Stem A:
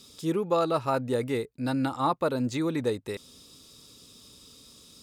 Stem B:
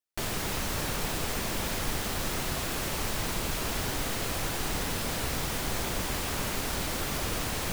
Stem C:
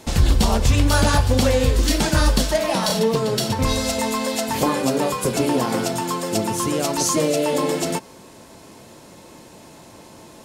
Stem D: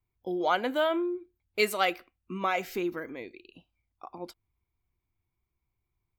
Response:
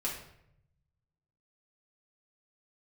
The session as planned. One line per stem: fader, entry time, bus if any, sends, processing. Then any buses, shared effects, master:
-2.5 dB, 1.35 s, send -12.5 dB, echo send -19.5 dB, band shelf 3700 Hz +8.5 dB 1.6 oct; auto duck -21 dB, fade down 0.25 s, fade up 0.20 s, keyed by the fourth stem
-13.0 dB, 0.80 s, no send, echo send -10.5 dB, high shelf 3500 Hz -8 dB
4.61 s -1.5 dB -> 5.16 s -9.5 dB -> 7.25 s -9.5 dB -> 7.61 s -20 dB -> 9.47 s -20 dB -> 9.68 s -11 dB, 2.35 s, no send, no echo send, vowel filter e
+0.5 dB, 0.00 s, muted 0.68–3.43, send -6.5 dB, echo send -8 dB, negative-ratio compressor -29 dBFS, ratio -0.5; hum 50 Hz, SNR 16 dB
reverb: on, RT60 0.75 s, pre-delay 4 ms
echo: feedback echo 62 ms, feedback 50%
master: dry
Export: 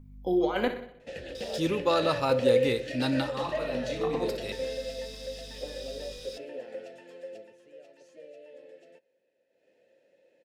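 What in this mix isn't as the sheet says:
stem B: muted; stem C: entry 2.35 s -> 1.00 s

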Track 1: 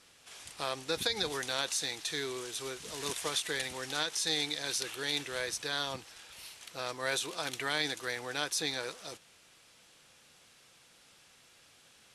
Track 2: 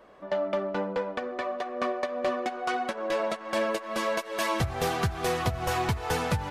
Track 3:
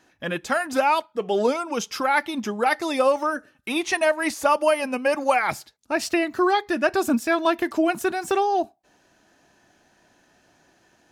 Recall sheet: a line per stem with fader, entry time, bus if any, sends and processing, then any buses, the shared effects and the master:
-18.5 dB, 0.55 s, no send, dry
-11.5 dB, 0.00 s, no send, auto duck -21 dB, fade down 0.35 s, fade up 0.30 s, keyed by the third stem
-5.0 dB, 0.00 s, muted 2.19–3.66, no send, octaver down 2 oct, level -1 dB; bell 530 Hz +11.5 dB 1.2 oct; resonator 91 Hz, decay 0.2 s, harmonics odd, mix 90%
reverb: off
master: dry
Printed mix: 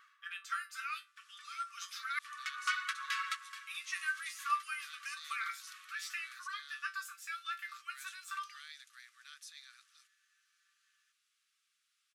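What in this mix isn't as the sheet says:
stem 1: entry 0.55 s -> 0.90 s; stem 2 -11.5 dB -> +0.5 dB; master: extra brick-wall FIR high-pass 1100 Hz

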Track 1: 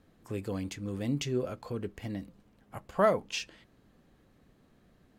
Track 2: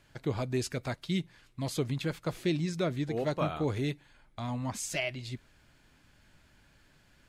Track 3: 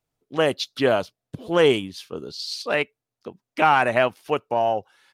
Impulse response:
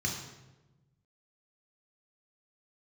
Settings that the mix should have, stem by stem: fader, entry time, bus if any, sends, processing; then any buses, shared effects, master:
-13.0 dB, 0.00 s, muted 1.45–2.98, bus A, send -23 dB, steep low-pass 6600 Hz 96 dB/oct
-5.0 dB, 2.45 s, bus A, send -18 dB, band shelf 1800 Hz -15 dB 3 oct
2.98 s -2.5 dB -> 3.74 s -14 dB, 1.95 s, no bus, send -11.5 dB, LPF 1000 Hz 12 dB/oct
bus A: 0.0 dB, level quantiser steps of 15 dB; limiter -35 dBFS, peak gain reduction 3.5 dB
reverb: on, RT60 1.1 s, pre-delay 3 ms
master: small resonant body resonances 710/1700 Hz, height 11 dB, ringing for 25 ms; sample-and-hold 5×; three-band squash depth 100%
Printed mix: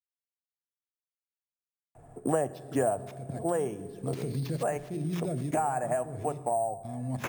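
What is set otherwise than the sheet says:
stem 1: muted; reverb return -7.0 dB

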